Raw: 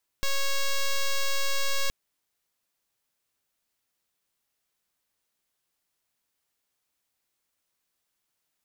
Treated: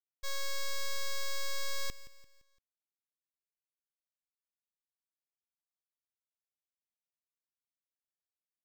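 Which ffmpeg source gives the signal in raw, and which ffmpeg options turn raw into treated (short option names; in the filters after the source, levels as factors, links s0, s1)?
-f lavfi -i "aevalsrc='0.0631*(2*lt(mod(551*t,1),0.05)-1)':d=1.67:s=44100"
-af "bandreject=f=2800:w=7.3,agate=range=0.0224:threshold=0.112:ratio=3:detection=peak,aecho=1:1:171|342|513|684:0.15|0.0643|0.0277|0.0119"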